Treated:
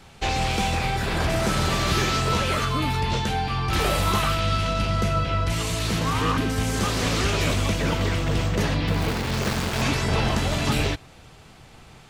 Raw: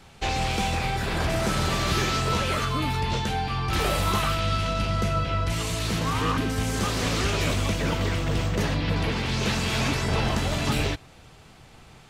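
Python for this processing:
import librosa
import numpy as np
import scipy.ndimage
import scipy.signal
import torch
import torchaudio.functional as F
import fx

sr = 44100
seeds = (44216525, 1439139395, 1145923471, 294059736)

y = fx.dead_time(x, sr, dead_ms=0.23, at=(8.87, 9.82))
y = y * librosa.db_to_amplitude(2.0)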